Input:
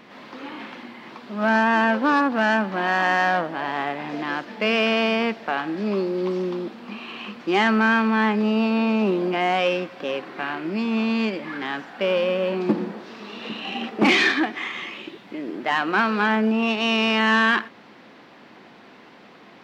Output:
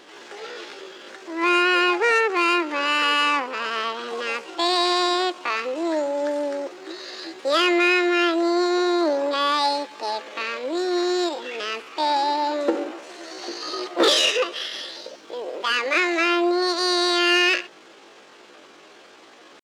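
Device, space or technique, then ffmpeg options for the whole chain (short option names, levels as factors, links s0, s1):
chipmunk voice: -af "asetrate=70004,aresample=44100,atempo=0.629961"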